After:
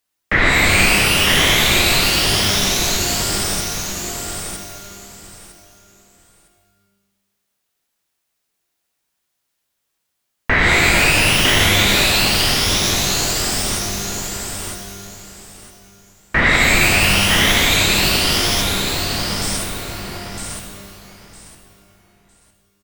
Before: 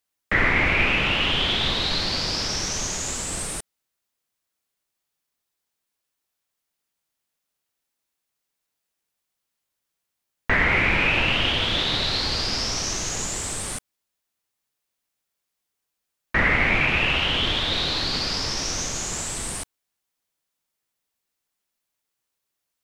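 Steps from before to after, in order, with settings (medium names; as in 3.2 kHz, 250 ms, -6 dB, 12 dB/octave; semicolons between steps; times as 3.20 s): 18.61–19.42 s: steep low-pass 2.9 kHz; feedback delay 957 ms, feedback 23%, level -4.5 dB; pitch-shifted reverb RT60 1.1 s, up +12 st, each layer -2 dB, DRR 5.5 dB; trim +4.5 dB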